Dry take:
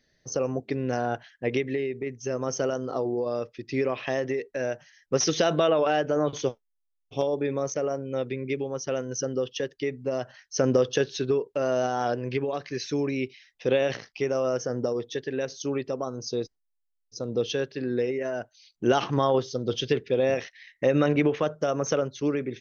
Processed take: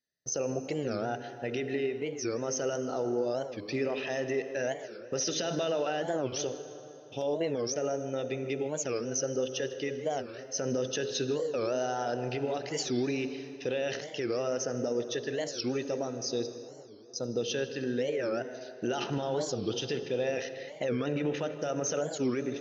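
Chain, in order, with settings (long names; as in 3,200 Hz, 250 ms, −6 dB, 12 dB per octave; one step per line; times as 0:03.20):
hum removal 52.43 Hz, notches 11
noise gate with hold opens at −44 dBFS
high-shelf EQ 3,600 Hz +8.5 dB
brickwall limiter −20 dBFS, peak gain reduction 11.5 dB
notch comb filter 1,100 Hz
tape delay 154 ms, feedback 76%, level −13.5 dB, low-pass 2,500 Hz
on a send at −12 dB: convolution reverb RT60 3.0 s, pre-delay 53 ms
on the sum: wow of a warped record 45 rpm, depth 250 cents
level −2 dB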